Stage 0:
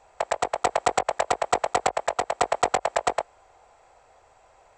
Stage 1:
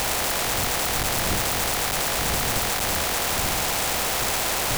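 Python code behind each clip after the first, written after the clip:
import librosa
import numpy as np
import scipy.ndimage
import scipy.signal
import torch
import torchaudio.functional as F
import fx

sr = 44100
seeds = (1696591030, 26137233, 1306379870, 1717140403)

y = np.sign(x) * np.sqrt(np.mean(np.square(x)))
y = fx.dmg_wind(y, sr, seeds[0], corner_hz=100.0, level_db=-27.0)
y = fx.spectral_comp(y, sr, ratio=2.0)
y = y * librosa.db_to_amplitude(-4.5)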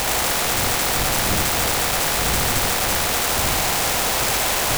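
y = x + 10.0 ** (-4.0 / 20.0) * np.pad(x, (int(76 * sr / 1000.0), 0))[:len(x)]
y = y * librosa.db_to_amplitude(2.5)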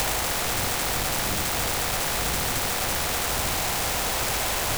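y = fx.band_squash(x, sr, depth_pct=100)
y = y * librosa.db_to_amplitude(-6.0)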